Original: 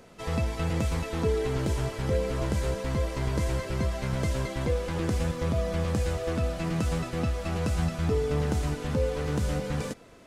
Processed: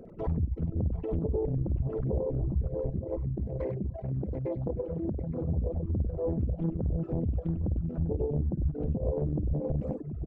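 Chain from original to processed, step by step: resonances exaggerated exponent 3; peak limiter -22.5 dBFS, peak gain reduction 7.5 dB; 2.90–5.49 s: high-pass 200 Hz 6 dB/octave; multi-tap echo 54/63/64/98/737/863 ms -6/-18/-17/-4/-10.5/-11 dB; reverb removal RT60 0.52 s; compression 2:1, threshold -32 dBFS, peak gain reduction 6 dB; reverb removal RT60 0.81 s; loudspeaker Doppler distortion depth 0.73 ms; trim +5 dB

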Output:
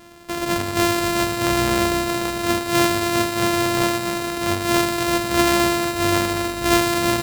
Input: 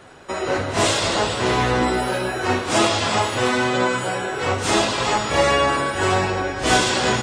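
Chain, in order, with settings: sorted samples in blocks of 128 samples; feedback echo behind a high-pass 157 ms, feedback 84%, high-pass 3.8 kHz, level -17 dB

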